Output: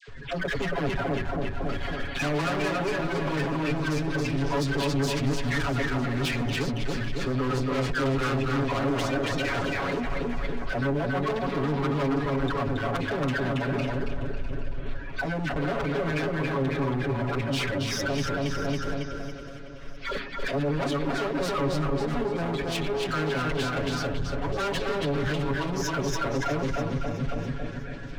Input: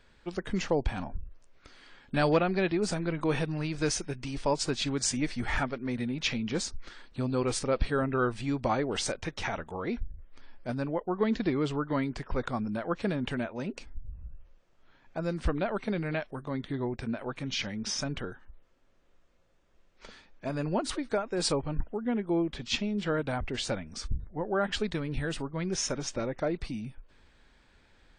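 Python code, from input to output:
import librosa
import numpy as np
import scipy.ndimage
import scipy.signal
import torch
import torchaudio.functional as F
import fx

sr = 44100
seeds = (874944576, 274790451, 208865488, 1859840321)

p1 = fx.spec_quant(x, sr, step_db=30)
p2 = scipy.signal.sosfilt(scipy.signal.butter(2, 3100.0, 'lowpass', fs=sr, output='sos'), p1)
p3 = fx.notch(p2, sr, hz=870.0, q=5.5)
p4 = fx.dispersion(p3, sr, late='lows', ms=82.0, hz=1100.0)
p5 = p4 + fx.echo_feedback(p4, sr, ms=276, feedback_pct=39, wet_db=-4.5, dry=0)
p6 = 10.0 ** (-30.5 / 20.0) * np.tanh(p5 / 10.0 ** (-30.5 / 20.0))
p7 = fx.over_compress(p6, sr, threshold_db=-47.0, ratio=-1.0)
p8 = p6 + (p7 * librosa.db_to_amplitude(2.0))
p9 = np.clip(p8, -10.0 ** (-33.0 / 20.0), 10.0 ** (-33.0 / 20.0))
p10 = p9 + 0.95 * np.pad(p9, (int(7.2 * sr / 1000.0), 0))[:len(p9)]
p11 = fx.echo_alternate(p10, sr, ms=326, hz=1500.0, feedback_pct=64, wet_db=-10.5)
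y = p11 * librosa.db_to_amplitude(4.5)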